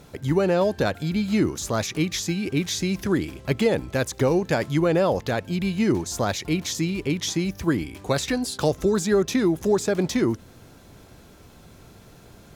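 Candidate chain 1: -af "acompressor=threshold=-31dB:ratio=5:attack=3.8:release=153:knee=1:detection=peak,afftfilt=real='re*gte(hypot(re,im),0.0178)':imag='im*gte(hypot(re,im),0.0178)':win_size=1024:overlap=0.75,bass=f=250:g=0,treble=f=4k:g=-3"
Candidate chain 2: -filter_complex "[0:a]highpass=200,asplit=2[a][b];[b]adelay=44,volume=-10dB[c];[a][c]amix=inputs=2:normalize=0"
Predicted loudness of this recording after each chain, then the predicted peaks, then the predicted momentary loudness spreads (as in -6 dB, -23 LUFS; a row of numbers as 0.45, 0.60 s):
-35.0, -24.5 LUFS; -20.5, -7.5 dBFS; 20, 6 LU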